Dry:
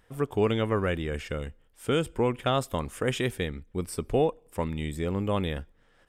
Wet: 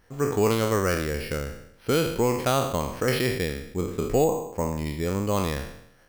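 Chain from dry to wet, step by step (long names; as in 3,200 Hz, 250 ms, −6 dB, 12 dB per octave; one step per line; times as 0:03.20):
peak hold with a decay on every bin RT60 0.76 s
0:04.24–0:04.86: high-shelf EQ 2,300 Hz −10 dB
bad sample-rate conversion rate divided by 6×, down filtered, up hold
level +1.5 dB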